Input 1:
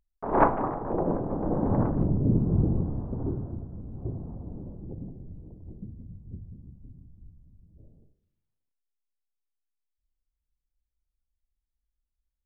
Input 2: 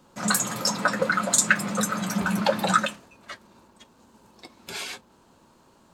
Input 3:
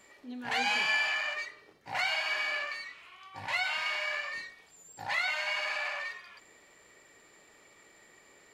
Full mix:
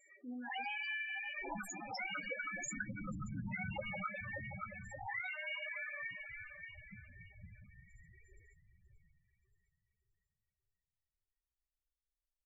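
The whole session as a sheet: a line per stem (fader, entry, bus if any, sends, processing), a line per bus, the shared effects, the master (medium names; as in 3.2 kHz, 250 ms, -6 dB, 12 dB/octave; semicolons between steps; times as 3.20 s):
-13.5 dB, 1.10 s, no send, echo send -13.5 dB, spectral gate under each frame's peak -10 dB strong
-11.0 dB, 1.30 s, no send, echo send -9.5 dB, high-pass 150 Hz 6 dB/octave
-2.0 dB, 0.00 s, no send, echo send -11 dB, none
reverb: none
echo: feedback delay 577 ms, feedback 44%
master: loudest bins only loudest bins 8; compression 2.5:1, threshold -42 dBFS, peak gain reduction 10.5 dB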